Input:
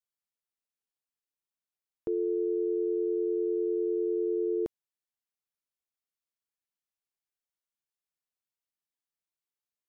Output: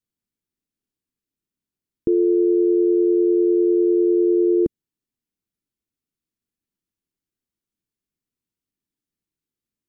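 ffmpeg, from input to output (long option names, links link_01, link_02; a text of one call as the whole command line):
ffmpeg -i in.wav -af "lowshelf=frequency=440:width_type=q:width=1.5:gain=13.5,volume=1.5dB" out.wav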